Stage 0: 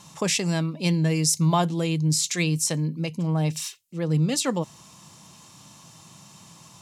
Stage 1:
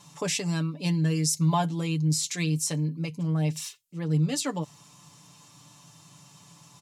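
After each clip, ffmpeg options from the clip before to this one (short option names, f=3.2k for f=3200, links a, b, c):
-af "aecho=1:1:6.9:0.67,volume=-6dB"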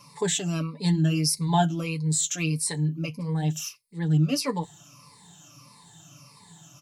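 -af "afftfilt=real='re*pow(10,16/40*sin(2*PI*(0.92*log(max(b,1)*sr/1024/100)/log(2)-(-1.6)*(pts-256)/sr)))':imag='im*pow(10,16/40*sin(2*PI*(0.92*log(max(b,1)*sr/1024/100)/log(2)-(-1.6)*(pts-256)/sr)))':win_size=1024:overlap=0.75,flanger=delay=0.4:depth=6.4:regen=-63:speed=0.81:shape=triangular,volume=3dB"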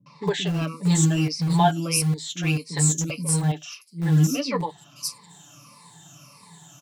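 -filter_complex "[0:a]acrossover=split=300|4800[a][b][c];[b]adelay=60[d];[c]adelay=670[e];[a][d][e]amix=inputs=3:normalize=0,acrossover=split=110|2700[f][g][h];[f]acrusher=bits=6:mix=0:aa=0.000001[i];[i][g][h]amix=inputs=3:normalize=0,volume=4dB"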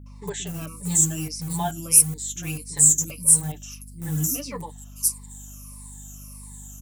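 -af "aexciter=amount=10.3:drive=4.9:freq=6.6k,aeval=exprs='val(0)+0.0224*(sin(2*PI*50*n/s)+sin(2*PI*2*50*n/s)/2+sin(2*PI*3*50*n/s)/3+sin(2*PI*4*50*n/s)/4+sin(2*PI*5*50*n/s)/5)':c=same,volume=-8.5dB"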